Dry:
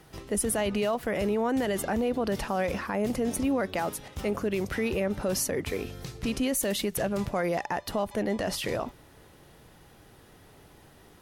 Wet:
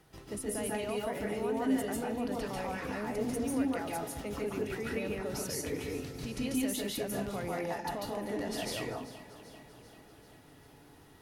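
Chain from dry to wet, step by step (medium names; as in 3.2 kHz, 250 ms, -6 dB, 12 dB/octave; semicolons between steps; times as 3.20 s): peak limiter -23 dBFS, peak gain reduction 6 dB; echo whose repeats swap between lows and highs 195 ms, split 970 Hz, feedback 78%, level -13 dB; reverberation RT60 0.30 s, pre-delay 140 ms, DRR -3 dB; trim -8.5 dB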